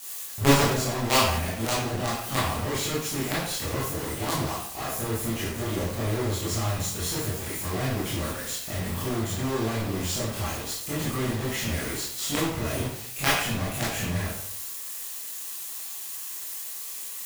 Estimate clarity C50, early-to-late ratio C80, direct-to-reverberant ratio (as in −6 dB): 2.0 dB, 5.0 dB, −8.5 dB